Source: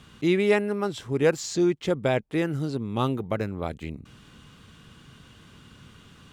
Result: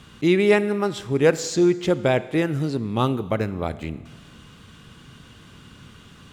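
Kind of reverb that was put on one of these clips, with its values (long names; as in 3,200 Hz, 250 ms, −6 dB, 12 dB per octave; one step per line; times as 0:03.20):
four-comb reverb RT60 1.4 s, combs from 25 ms, DRR 15 dB
level +4 dB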